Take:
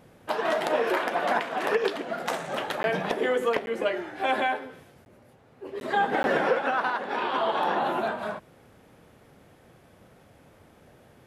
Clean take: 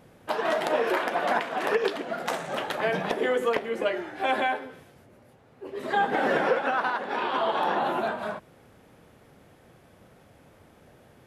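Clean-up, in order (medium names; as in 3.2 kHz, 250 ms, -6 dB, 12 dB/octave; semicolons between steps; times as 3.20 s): interpolate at 2.83/3.66/5.05/5.80/6.23 s, 11 ms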